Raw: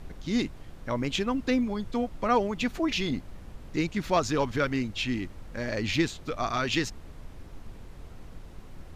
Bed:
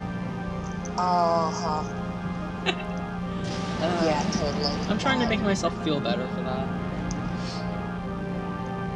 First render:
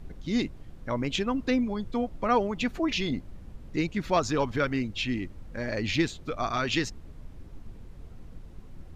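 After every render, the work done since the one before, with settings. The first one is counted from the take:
broadband denoise 7 dB, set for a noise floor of −46 dBFS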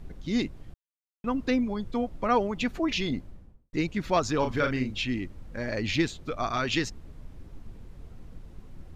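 0:00.74–0:01.24: silence
0:03.15–0:03.73: fade out and dull
0:04.39–0:04.99: double-tracking delay 39 ms −6 dB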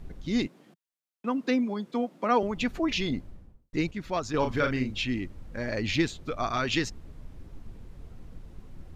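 0:00.47–0:02.43: Butterworth high-pass 180 Hz
0:03.91–0:04.34: clip gain −5.5 dB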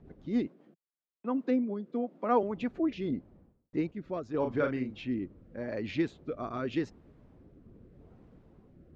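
resonant band-pass 420 Hz, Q 0.56
rotating-speaker cabinet horn 7.5 Hz, later 0.85 Hz, at 0:00.51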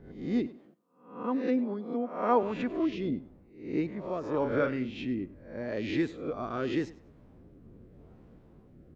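peak hold with a rise ahead of every peak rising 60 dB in 0.53 s
repeating echo 100 ms, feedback 25%, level −19 dB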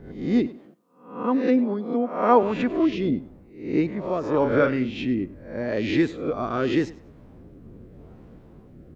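level +8 dB

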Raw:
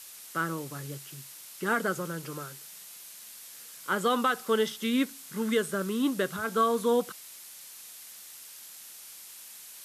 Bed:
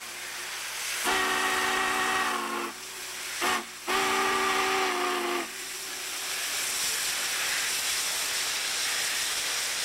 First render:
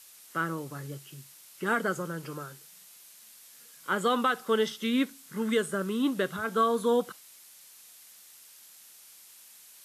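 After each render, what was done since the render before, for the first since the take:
noise reduction from a noise print 6 dB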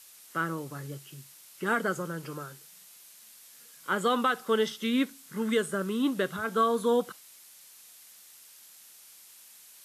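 no processing that can be heard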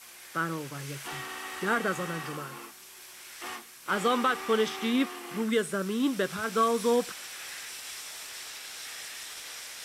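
mix in bed −12.5 dB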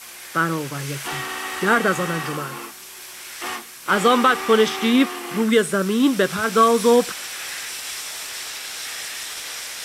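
level +10 dB

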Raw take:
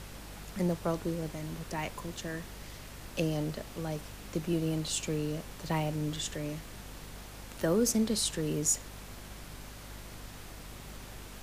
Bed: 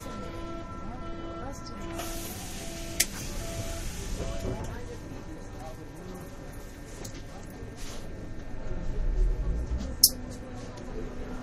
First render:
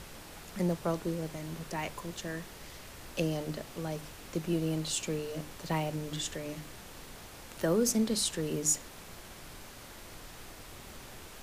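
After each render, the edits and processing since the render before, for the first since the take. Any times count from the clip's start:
mains-hum notches 50/100/150/200/250/300 Hz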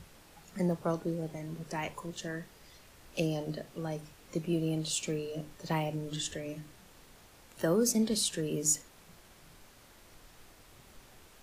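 noise reduction from a noise print 9 dB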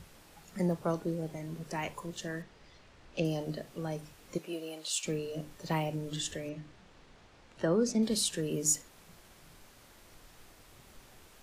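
0:02.42–0:03.25: high-frequency loss of the air 110 metres
0:04.37–0:05.04: high-pass filter 380 Hz → 970 Hz
0:06.49–0:08.03: high-frequency loss of the air 110 metres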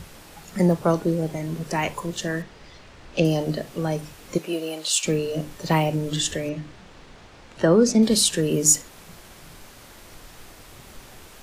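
level +11.5 dB

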